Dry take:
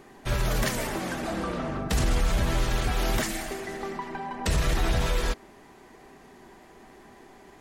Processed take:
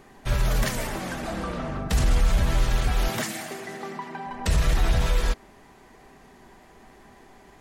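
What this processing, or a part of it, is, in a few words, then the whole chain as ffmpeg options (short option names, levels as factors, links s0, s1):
low shelf boost with a cut just above: -filter_complex "[0:a]lowshelf=f=94:g=5.5,equalizer=f=340:t=o:w=0.65:g=-4,asettb=1/sr,asplit=3[s0][s1][s2];[s0]atrim=end=3.084[s3];[s1]atrim=start=3.08:end=4.27,asetpts=PTS-STARTPTS,afade=t=in:d=0.004:c=qsin,afade=t=out:st=1.186:d=0.004:c=qsin,highpass=f=120:w=0.5412,highpass=f=120:w=1.3066[s4];[s2]atrim=start=4.266[s5];[s3][s4]acrossfade=d=0.004:c1=hsin:c2=qsin[s6];[s6][s5]acrossfade=d=0.004:c1=qsin:c2=hsin"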